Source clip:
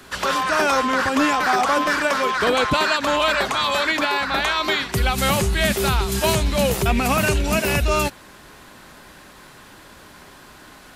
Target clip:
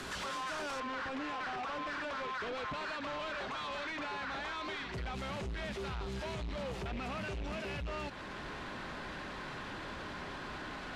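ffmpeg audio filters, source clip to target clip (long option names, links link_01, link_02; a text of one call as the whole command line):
ffmpeg -i in.wav -af "acompressor=threshold=-37dB:ratio=3,asoftclip=type=hard:threshold=-38.5dB,asetnsamples=nb_out_samples=441:pad=0,asendcmd='0.8 lowpass f 3700',lowpass=8600,alimiter=level_in=22dB:limit=-24dB:level=0:latency=1:release=16,volume=-22dB,volume=9.5dB" out.wav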